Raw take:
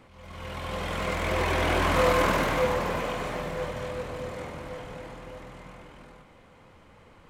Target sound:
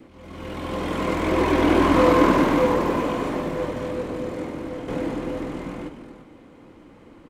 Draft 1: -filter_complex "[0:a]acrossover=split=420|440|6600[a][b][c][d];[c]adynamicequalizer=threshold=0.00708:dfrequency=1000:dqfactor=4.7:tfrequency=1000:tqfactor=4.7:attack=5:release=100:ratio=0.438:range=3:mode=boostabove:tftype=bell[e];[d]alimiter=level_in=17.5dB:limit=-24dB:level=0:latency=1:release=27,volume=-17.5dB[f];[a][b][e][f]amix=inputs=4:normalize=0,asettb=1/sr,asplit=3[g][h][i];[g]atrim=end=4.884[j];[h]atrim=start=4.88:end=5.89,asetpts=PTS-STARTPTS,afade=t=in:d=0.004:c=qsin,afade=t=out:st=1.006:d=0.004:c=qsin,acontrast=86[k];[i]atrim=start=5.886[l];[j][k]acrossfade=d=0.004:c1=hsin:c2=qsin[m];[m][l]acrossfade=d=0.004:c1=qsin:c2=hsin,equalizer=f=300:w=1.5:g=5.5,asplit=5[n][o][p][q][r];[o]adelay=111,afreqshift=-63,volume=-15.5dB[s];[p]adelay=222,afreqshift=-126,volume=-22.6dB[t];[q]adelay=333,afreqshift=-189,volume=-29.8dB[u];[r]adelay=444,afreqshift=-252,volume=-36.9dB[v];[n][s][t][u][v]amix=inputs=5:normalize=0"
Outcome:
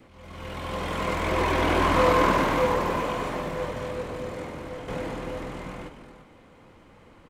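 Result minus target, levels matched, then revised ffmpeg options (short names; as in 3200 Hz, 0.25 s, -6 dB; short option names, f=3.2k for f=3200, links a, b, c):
250 Hz band -5.0 dB
-filter_complex "[0:a]acrossover=split=420|440|6600[a][b][c][d];[c]adynamicequalizer=threshold=0.00708:dfrequency=1000:dqfactor=4.7:tfrequency=1000:tqfactor=4.7:attack=5:release=100:ratio=0.438:range=3:mode=boostabove:tftype=bell[e];[d]alimiter=level_in=17.5dB:limit=-24dB:level=0:latency=1:release=27,volume=-17.5dB[f];[a][b][e][f]amix=inputs=4:normalize=0,asettb=1/sr,asplit=3[g][h][i];[g]atrim=end=4.884[j];[h]atrim=start=4.88:end=5.89,asetpts=PTS-STARTPTS,afade=t=in:d=0.004:c=qsin,afade=t=out:st=1.006:d=0.004:c=qsin,acontrast=86[k];[i]atrim=start=5.886[l];[j][k]acrossfade=d=0.004:c1=hsin:c2=qsin[m];[m][l]acrossfade=d=0.004:c1=qsin:c2=hsin,equalizer=f=300:w=1.5:g=16.5,asplit=5[n][o][p][q][r];[o]adelay=111,afreqshift=-63,volume=-15.5dB[s];[p]adelay=222,afreqshift=-126,volume=-22.6dB[t];[q]adelay=333,afreqshift=-189,volume=-29.8dB[u];[r]adelay=444,afreqshift=-252,volume=-36.9dB[v];[n][s][t][u][v]amix=inputs=5:normalize=0"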